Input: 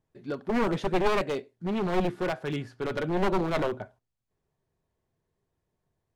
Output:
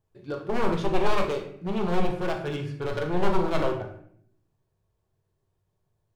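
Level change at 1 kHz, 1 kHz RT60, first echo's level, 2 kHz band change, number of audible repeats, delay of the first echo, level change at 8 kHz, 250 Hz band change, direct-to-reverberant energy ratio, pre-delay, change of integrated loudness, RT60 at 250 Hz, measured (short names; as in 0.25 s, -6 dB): +1.5 dB, 0.60 s, none, 0.0 dB, none, none, n/a, 0.0 dB, 3.0 dB, 14 ms, +1.0 dB, 1.1 s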